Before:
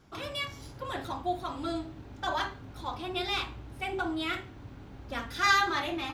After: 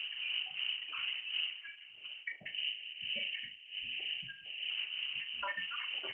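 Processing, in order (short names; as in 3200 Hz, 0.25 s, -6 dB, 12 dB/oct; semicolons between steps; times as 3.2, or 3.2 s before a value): random spectral dropouts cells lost 82%; wind noise 270 Hz -32 dBFS; compressor 10:1, threshold -33 dBFS, peak gain reduction 18 dB; inverted band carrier 3000 Hz; HPF 99 Hz 12 dB/oct; resonator 180 Hz, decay 0.51 s, harmonics all, mix 30%; flutter echo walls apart 6.6 m, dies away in 0.26 s; spectral delete 2.41–4.7, 800–1600 Hz; Opus 12 kbps 48000 Hz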